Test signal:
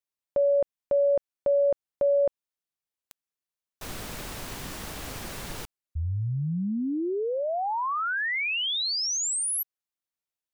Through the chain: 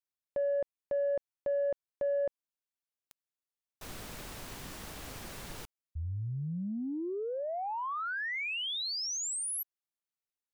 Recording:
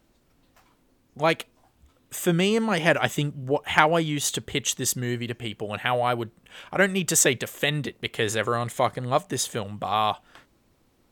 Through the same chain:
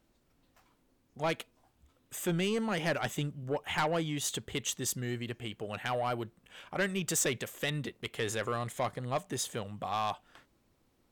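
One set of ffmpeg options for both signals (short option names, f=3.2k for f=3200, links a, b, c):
-af "asoftclip=type=tanh:threshold=-17dB,volume=-7dB"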